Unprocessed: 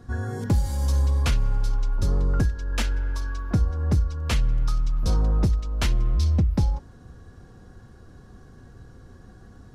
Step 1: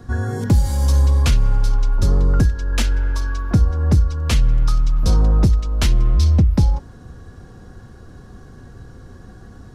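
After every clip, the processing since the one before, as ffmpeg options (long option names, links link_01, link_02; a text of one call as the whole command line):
ffmpeg -i in.wav -filter_complex "[0:a]acrossover=split=380|3000[link_01][link_02][link_03];[link_02]acompressor=threshold=-36dB:ratio=2.5[link_04];[link_01][link_04][link_03]amix=inputs=3:normalize=0,volume=7dB" out.wav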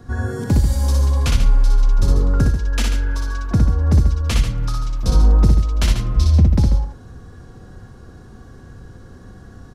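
ffmpeg -i in.wav -af "aecho=1:1:61.22|139.9:0.708|0.355,volume=-2dB" out.wav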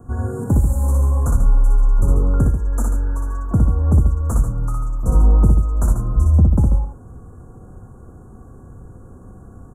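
ffmpeg -i in.wav -af "asuperstop=centerf=3200:order=12:qfactor=0.56" out.wav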